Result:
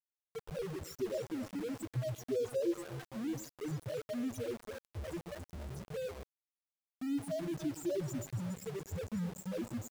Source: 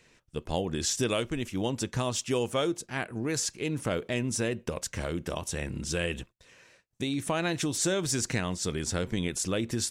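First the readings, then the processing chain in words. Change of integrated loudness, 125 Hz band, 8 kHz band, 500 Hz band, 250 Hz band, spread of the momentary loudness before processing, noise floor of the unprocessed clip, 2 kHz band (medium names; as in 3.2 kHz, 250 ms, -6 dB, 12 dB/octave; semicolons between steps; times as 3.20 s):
-9.0 dB, -8.0 dB, -19.0 dB, -6.5 dB, -6.5 dB, 6 LU, -65 dBFS, -17.0 dB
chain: loudest bins only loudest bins 1; two-band feedback delay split 520 Hz, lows 112 ms, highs 280 ms, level -12.5 dB; small samples zeroed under -44.5 dBFS; trim +1.5 dB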